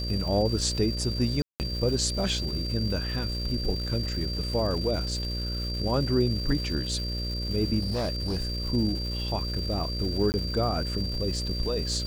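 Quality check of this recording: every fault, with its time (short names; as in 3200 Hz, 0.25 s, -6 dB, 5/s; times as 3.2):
buzz 60 Hz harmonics 10 -32 dBFS
crackle 460/s -36 dBFS
tone 4700 Hz -34 dBFS
1.42–1.6 gap 0.179 s
7.79–8.62 clipped -24.5 dBFS
10.32–10.34 gap 19 ms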